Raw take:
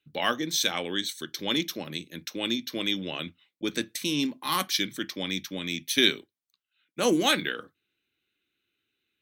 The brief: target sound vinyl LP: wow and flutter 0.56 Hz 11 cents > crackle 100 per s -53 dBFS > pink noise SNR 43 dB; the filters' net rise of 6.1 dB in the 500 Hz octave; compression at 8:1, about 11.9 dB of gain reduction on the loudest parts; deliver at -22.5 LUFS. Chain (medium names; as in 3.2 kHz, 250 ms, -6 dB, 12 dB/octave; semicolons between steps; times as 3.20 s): peaking EQ 500 Hz +7.5 dB; compression 8:1, threshold -26 dBFS; wow and flutter 0.56 Hz 11 cents; crackle 100 per s -53 dBFS; pink noise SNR 43 dB; trim +9.5 dB